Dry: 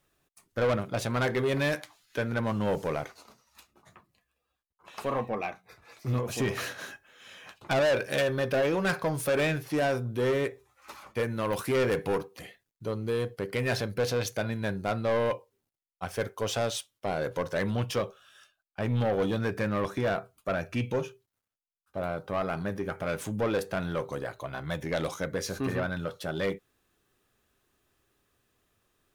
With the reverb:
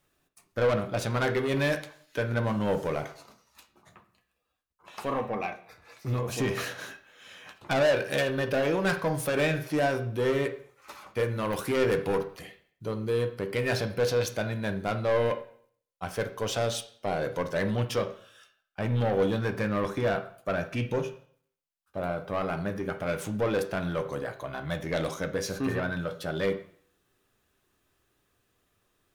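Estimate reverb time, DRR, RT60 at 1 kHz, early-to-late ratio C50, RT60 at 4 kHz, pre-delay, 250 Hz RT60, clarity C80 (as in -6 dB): 0.55 s, 7.5 dB, 0.55 s, 12.5 dB, 0.50 s, 5 ms, 0.55 s, 16.0 dB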